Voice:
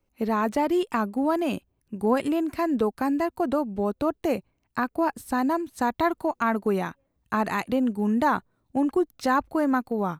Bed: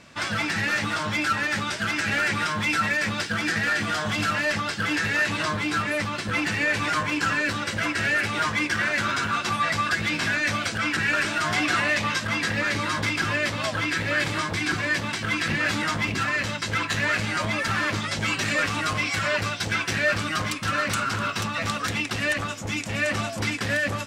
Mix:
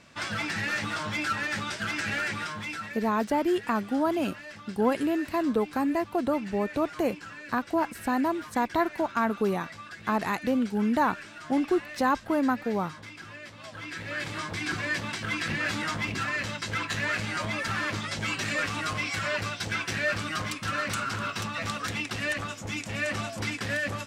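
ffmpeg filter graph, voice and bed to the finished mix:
ffmpeg -i stem1.wav -i stem2.wav -filter_complex "[0:a]adelay=2750,volume=-2dB[link_01];[1:a]volume=9dB,afade=type=out:start_time=2.06:duration=0.97:silence=0.199526,afade=type=in:start_time=13.57:duration=1.22:silence=0.199526[link_02];[link_01][link_02]amix=inputs=2:normalize=0" out.wav

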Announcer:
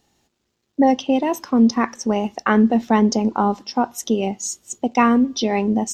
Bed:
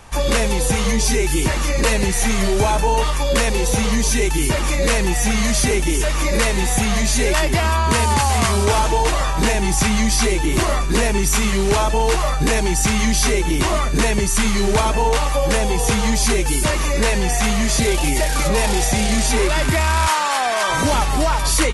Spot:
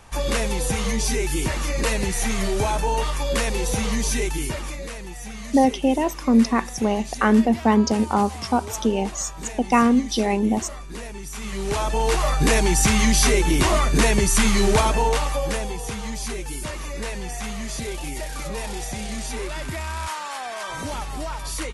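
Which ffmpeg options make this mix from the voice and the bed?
ffmpeg -i stem1.wav -i stem2.wav -filter_complex "[0:a]adelay=4750,volume=-1.5dB[link_01];[1:a]volume=11.5dB,afade=type=out:start_time=4.17:duration=0.73:silence=0.251189,afade=type=in:start_time=11.34:duration=1.16:silence=0.141254,afade=type=out:start_time=14.65:duration=1.16:silence=0.251189[link_02];[link_01][link_02]amix=inputs=2:normalize=0" out.wav

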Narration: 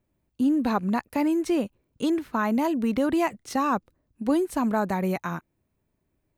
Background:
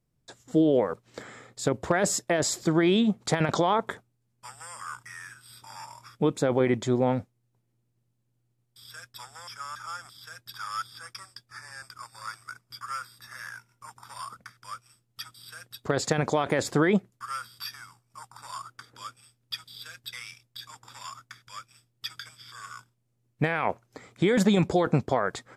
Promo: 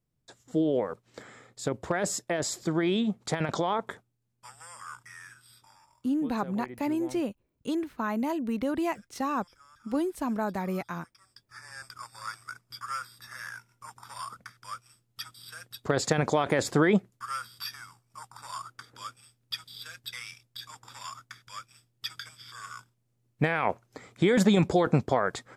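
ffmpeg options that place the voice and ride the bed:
ffmpeg -i stem1.wav -i stem2.wav -filter_complex "[0:a]adelay=5650,volume=-5.5dB[link_01];[1:a]volume=14.5dB,afade=type=out:start_time=5.4:duration=0.4:silence=0.188365,afade=type=in:start_time=11.18:duration=0.65:silence=0.112202[link_02];[link_01][link_02]amix=inputs=2:normalize=0" out.wav

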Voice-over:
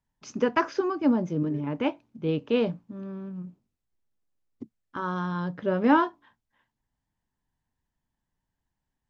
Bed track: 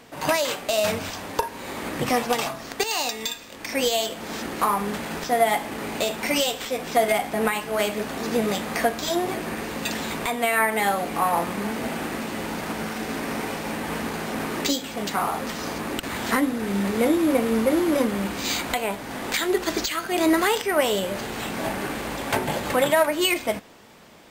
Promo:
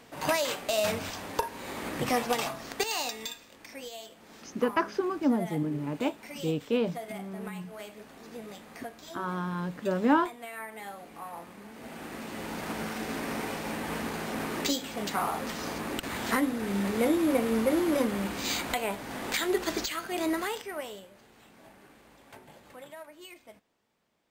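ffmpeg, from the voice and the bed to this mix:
ffmpeg -i stem1.wav -i stem2.wav -filter_complex "[0:a]adelay=4200,volume=-3dB[link_01];[1:a]volume=9.5dB,afade=type=out:start_time=2.84:duration=0.97:silence=0.188365,afade=type=in:start_time=11.71:duration=1.05:silence=0.188365,afade=type=out:start_time=19.61:duration=1.49:silence=0.0841395[link_02];[link_01][link_02]amix=inputs=2:normalize=0" out.wav

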